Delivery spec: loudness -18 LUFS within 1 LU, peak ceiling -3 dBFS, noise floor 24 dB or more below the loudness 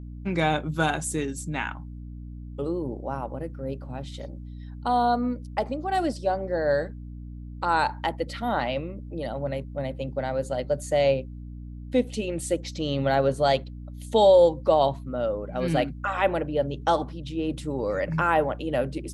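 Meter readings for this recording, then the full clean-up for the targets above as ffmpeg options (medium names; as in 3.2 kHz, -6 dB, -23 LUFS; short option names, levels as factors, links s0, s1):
hum 60 Hz; highest harmonic 300 Hz; hum level -36 dBFS; loudness -26.0 LUFS; peak level -7.5 dBFS; loudness target -18.0 LUFS
-> -af "bandreject=f=60:t=h:w=4,bandreject=f=120:t=h:w=4,bandreject=f=180:t=h:w=4,bandreject=f=240:t=h:w=4,bandreject=f=300:t=h:w=4"
-af "volume=2.51,alimiter=limit=0.708:level=0:latency=1"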